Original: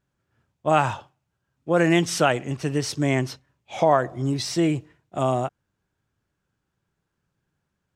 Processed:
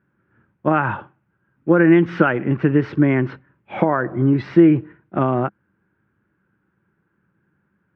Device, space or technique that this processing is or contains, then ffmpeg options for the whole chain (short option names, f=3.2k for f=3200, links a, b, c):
bass amplifier: -af "acompressor=threshold=-21dB:ratio=6,highpass=87,equalizer=f=200:t=q:w=4:g=8,equalizer=f=330:t=q:w=4:g=7,equalizer=f=690:t=q:w=4:g=-7,equalizer=f=1.5k:t=q:w=4:g=7,lowpass=f=2.2k:w=0.5412,lowpass=f=2.2k:w=1.3066,volume=8dB"